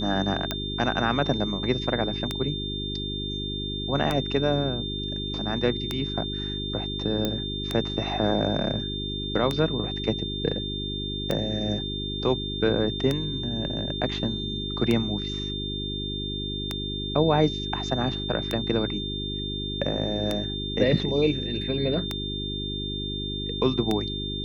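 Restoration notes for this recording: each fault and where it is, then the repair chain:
hum 50 Hz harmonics 8 -33 dBFS
tick 33 1/3 rpm -11 dBFS
tone 3600 Hz -32 dBFS
7.25 pop -12 dBFS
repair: de-click; de-hum 50 Hz, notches 8; notch 3600 Hz, Q 30

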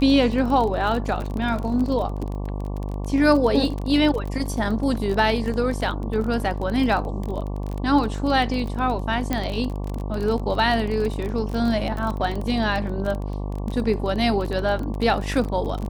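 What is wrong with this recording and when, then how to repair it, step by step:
buzz 50 Hz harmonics 23 -28 dBFS
crackle 29/s -26 dBFS
9.33 pop -9 dBFS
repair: de-click; de-hum 50 Hz, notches 23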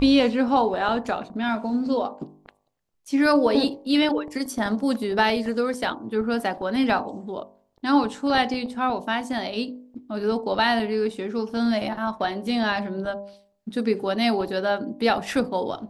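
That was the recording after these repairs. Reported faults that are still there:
none

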